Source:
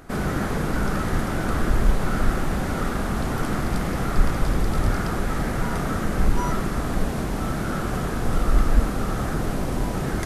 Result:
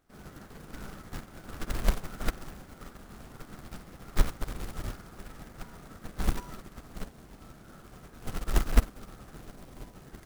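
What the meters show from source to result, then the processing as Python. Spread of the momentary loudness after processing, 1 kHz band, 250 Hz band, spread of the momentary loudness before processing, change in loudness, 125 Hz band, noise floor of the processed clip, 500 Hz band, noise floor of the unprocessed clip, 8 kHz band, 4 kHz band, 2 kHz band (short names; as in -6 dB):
17 LU, -16.0 dB, -16.5 dB, 3 LU, -11.5 dB, -13.0 dB, -53 dBFS, -15.5 dB, -27 dBFS, -9.5 dB, -9.0 dB, -14.0 dB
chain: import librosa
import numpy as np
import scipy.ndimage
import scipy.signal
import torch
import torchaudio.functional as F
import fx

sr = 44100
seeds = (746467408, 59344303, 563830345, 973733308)

y = fx.quant_companded(x, sr, bits=4)
y = fx.upward_expand(y, sr, threshold_db=-26.0, expansion=2.5)
y = F.gain(torch.from_numpy(y), -3.0).numpy()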